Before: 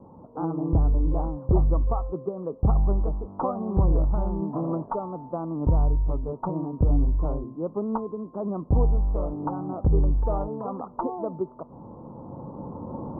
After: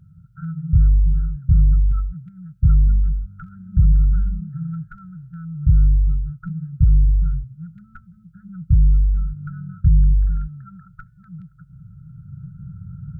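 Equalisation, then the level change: brick-wall FIR band-stop 180–1300 Hz; +7.5 dB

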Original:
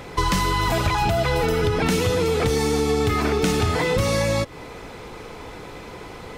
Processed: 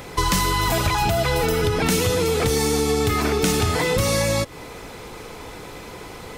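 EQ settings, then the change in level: high shelf 6400 Hz +10.5 dB; 0.0 dB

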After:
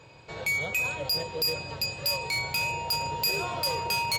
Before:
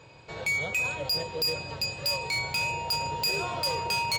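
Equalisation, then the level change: bell 12000 Hz +10 dB 0.24 oct; 0.0 dB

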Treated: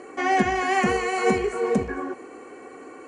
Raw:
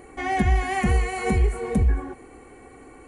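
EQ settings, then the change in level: speaker cabinet 320–7100 Hz, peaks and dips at 750 Hz -3 dB, 2100 Hz -6 dB, 3600 Hz -8 dB; notch 840 Hz, Q 12; +7.5 dB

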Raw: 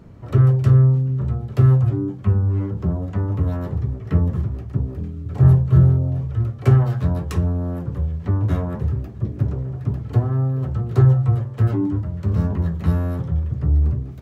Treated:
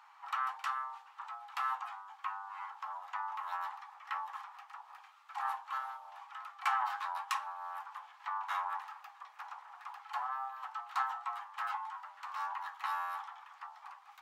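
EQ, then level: rippled Chebyshev high-pass 800 Hz, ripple 3 dB; high shelf 2000 Hz -11.5 dB; +7.5 dB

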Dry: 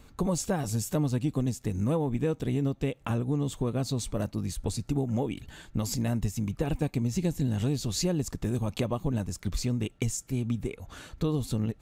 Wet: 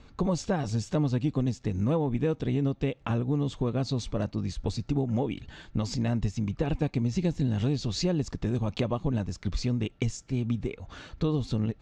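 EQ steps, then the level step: LPF 5700 Hz 24 dB/oct; +1.0 dB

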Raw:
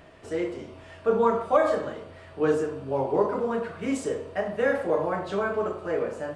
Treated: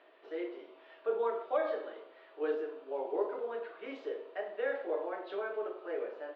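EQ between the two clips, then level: dynamic EQ 1100 Hz, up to -6 dB, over -42 dBFS, Q 2.4; elliptic band-pass 350–3800 Hz, stop band 40 dB; -8.5 dB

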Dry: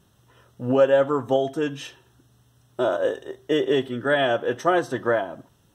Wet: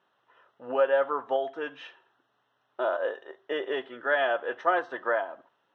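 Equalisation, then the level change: BPF 710–2400 Hz; air absorption 110 m; 0.0 dB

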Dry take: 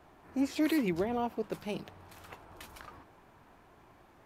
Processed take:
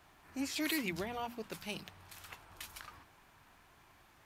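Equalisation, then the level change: passive tone stack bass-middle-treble 5-5-5; notches 60/120/180/240 Hz; +11.0 dB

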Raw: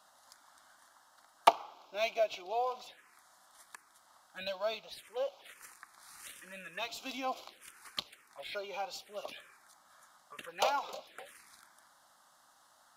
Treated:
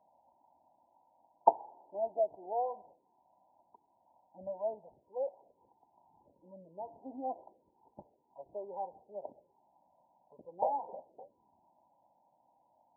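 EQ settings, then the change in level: HPF 69 Hz; brick-wall FIR low-pass 1000 Hz; 0.0 dB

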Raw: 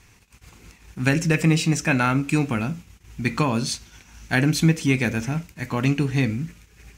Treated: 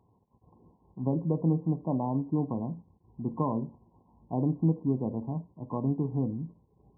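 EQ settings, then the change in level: HPF 120 Hz 12 dB/oct; brick-wall FIR low-pass 1100 Hz; -6.5 dB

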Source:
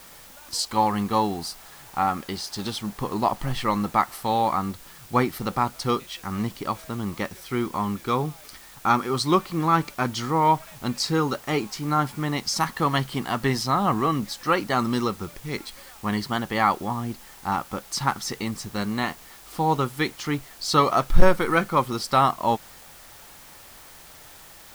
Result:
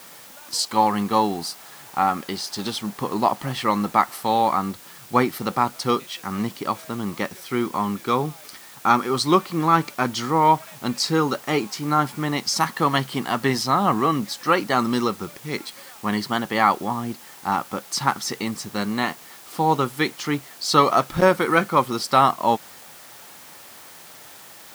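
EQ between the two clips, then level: HPF 150 Hz 12 dB/oct; +3.0 dB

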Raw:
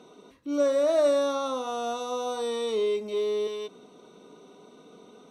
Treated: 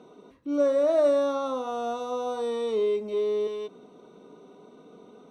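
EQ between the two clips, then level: high shelf 2200 Hz -10.5 dB; +1.5 dB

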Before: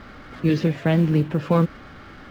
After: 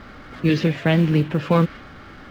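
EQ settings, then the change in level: dynamic EQ 2800 Hz, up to +6 dB, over -43 dBFS, Q 0.74; +1.0 dB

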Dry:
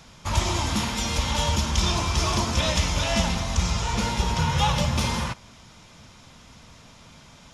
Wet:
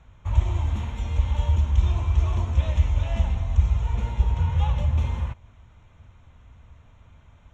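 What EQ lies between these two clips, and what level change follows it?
resonant low shelf 120 Hz +11.5 dB, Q 1.5; dynamic EQ 1400 Hz, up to -5 dB, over -44 dBFS, Q 1.6; running mean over 9 samples; -8.0 dB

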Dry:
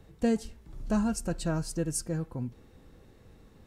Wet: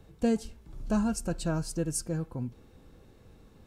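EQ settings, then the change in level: notch 1900 Hz, Q 10; 0.0 dB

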